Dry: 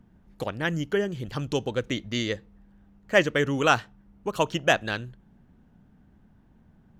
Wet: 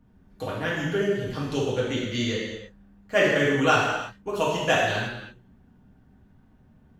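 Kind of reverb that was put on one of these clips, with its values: gated-style reverb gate 380 ms falling, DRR -7 dB; trim -6 dB

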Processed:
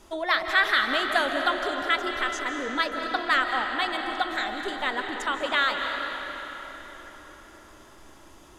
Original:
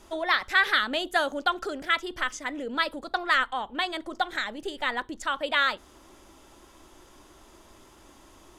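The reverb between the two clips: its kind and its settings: algorithmic reverb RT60 4.6 s, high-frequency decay 0.7×, pre-delay 115 ms, DRR 3 dB

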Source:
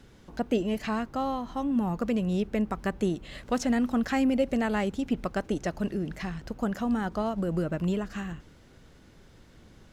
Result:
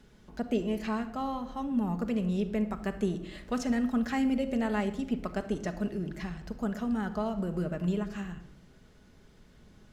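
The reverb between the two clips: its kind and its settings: simulated room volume 3200 m³, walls furnished, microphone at 1.4 m; trim -5 dB

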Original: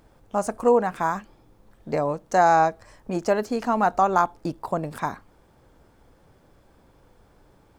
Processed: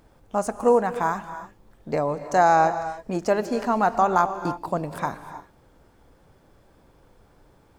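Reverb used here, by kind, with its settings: gated-style reverb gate 340 ms rising, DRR 11 dB

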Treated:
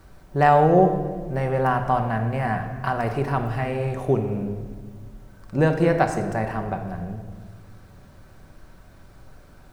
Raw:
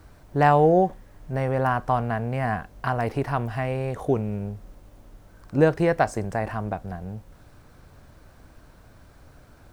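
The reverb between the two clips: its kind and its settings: simulated room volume 1600 m³, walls mixed, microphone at 1.1 m

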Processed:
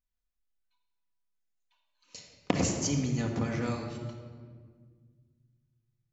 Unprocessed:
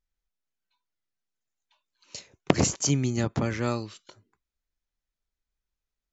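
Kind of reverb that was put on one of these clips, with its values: simulated room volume 2200 m³, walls mixed, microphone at 1.9 m; trim -7.5 dB

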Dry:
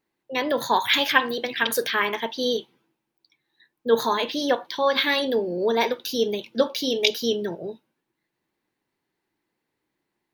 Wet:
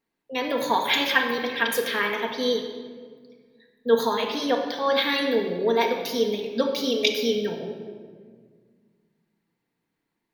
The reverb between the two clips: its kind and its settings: simulated room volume 2300 m³, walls mixed, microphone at 1.7 m; trim -3.5 dB

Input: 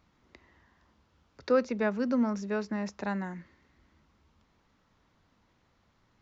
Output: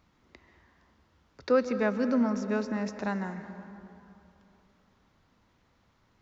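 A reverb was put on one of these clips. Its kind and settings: plate-style reverb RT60 2.9 s, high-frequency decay 0.5×, pre-delay 120 ms, DRR 10 dB; trim +1 dB

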